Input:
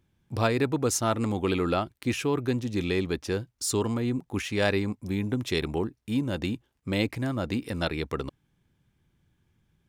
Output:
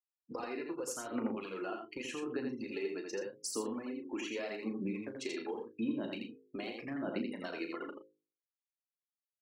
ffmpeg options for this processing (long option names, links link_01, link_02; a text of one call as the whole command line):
ffmpeg -i in.wav -filter_complex "[0:a]bandreject=frequency=3400:width=6.2,afftfilt=real='re*gte(hypot(re,im),0.0141)':imag='im*gte(hypot(re,im),0.0141)':win_size=1024:overlap=0.75,highpass=frequency=210:width=0.5412,highpass=frequency=210:width=1.3066,bandreject=frequency=50:width_type=h:width=6,bandreject=frequency=100:width_type=h:width=6,bandreject=frequency=150:width_type=h:width=6,bandreject=frequency=200:width_type=h:width=6,bandreject=frequency=250:width_type=h:width=6,bandreject=frequency=300:width_type=h:width=6,bandreject=frequency=350:width_type=h:width=6,bandreject=frequency=400:width_type=h:width=6,bandreject=frequency=450:width_type=h:width=6,bandreject=frequency=500:width_type=h:width=6,alimiter=limit=-19.5dB:level=0:latency=1:release=174,acompressor=threshold=-41dB:ratio=10,aphaser=in_gain=1:out_gain=1:delay=3.1:decay=0.52:speed=0.8:type=sinusoidal,asetrate=46305,aresample=44100,flanger=delay=3.4:depth=6.1:regen=-51:speed=0.25:shape=sinusoidal,asplit=2[link_01][link_02];[link_02]adelay=36,volume=-9.5dB[link_03];[link_01][link_03]amix=inputs=2:normalize=0,aecho=1:1:83:0.596,volume=5.5dB" out.wav